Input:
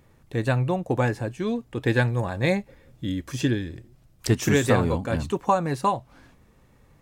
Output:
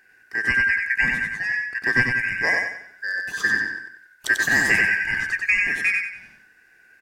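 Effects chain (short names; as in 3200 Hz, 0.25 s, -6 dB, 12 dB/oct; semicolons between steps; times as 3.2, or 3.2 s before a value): four-band scrambler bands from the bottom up 2143; feedback echo 93 ms, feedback 37%, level -3.5 dB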